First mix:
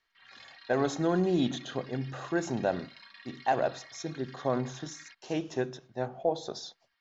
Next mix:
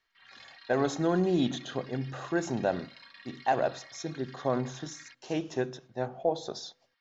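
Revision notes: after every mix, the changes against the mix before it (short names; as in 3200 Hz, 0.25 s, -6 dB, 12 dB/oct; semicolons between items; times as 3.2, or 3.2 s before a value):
background: remove LPF 8600 Hz; reverb: on, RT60 1.3 s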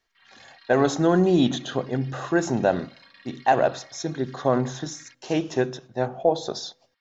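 speech +7.5 dB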